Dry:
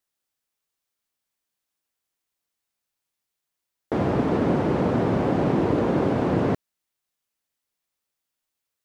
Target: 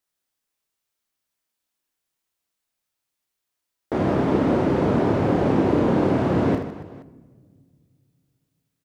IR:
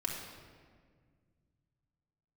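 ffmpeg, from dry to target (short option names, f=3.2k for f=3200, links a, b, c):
-filter_complex "[0:a]aecho=1:1:30|78|154.8|277.7|474.3:0.631|0.398|0.251|0.158|0.1,asplit=2[a][b];[1:a]atrim=start_sample=2205[c];[b][c]afir=irnorm=-1:irlink=0,volume=-17dB[d];[a][d]amix=inputs=2:normalize=0,volume=-1.5dB"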